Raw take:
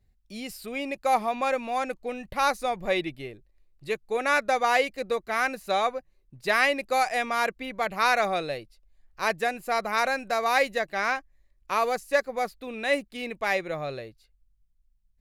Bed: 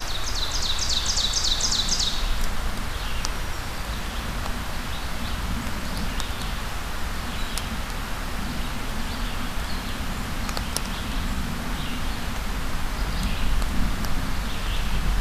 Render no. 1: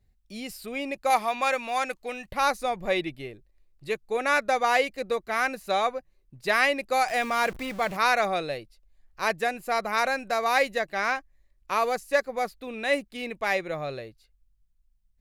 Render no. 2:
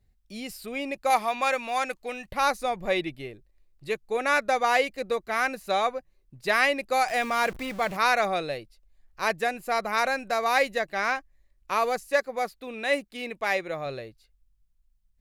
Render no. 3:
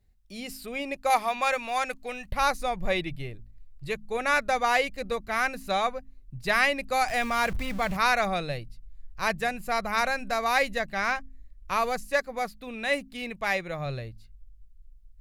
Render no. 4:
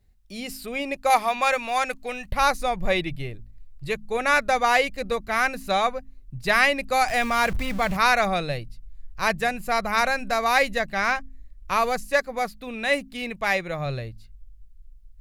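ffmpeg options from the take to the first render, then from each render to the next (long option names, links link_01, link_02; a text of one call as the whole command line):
ffmpeg -i in.wav -filter_complex "[0:a]asettb=1/sr,asplit=3[link_01][link_02][link_03];[link_01]atrim=end=1.104[link_04];[link_02]atrim=start=1.1:end=2.32,asetpts=PTS-STARTPTS,afade=type=in:duration=0.004:curve=qsin,afade=type=out:start_time=1.216:duration=0.004:curve=qsin,tiltshelf=frequency=740:gain=-6[link_05];[link_03]atrim=start=2.316[link_06];[link_04][link_05]acrossfade=duration=0.004:curve1=hsin:curve2=qsin[link_07];[link_07][link_06]acrossfade=duration=0.004:curve1=qsin:curve2=hsin,asettb=1/sr,asplit=3[link_08][link_09][link_10];[link_08]atrim=end=7.084[link_11];[link_09]atrim=start=7.08:end=7.97,asetpts=PTS-STARTPTS,afade=type=in:duration=0.004:curve=qsin,afade=type=out:start_time=0.886:duration=0.004:curve=qsin,aeval=exprs='val(0)+0.5*0.015*sgn(val(0))':channel_layout=same[link_12];[link_10]atrim=start=7.966[link_13];[link_11][link_12]acrossfade=duration=0.004:curve1=hsin:curve2=qsin[link_14];[link_14][link_13]acrossfade=duration=0.004:curve1=qsin:curve2=hsin" out.wav
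ffmpeg -i in.wav -filter_complex "[0:a]asettb=1/sr,asplit=3[link_01][link_02][link_03];[link_01]atrim=end=12.074[link_04];[link_02]atrim=start=12.07:end=13.86,asetpts=PTS-STARTPTS,afade=type=in:duration=0.004:curve=qsin,afade=type=out:start_time=1.786:duration=0.004:curve=qsin,lowshelf=frequency=130:gain=-8.5[link_05];[link_03]atrim=start=13.856[link_06];[link_04][link_05]acrossfade=duration=0.004:curve1=hsin:curve2=qsin[link_07];[link_07][link_06]acrossfade=duration=0.004:curve1=qsin:curve2=hsin" out.wav
ffmpeg -i in.wav -af "bandreject=frequency=53:width_type=h:width=4,bandreject=frequency=106:width_type=h:width=4,bandreject=frequency=159:width_type=h:width=4,bandreject=frequency=212:width_type=h:width=4,bandreject=frequency=265:width_type=h:width=4,asubboost=boost=7:cutoff=130" out.wav
ffmpeg -i in.wav -af "volume=4dB" out.wav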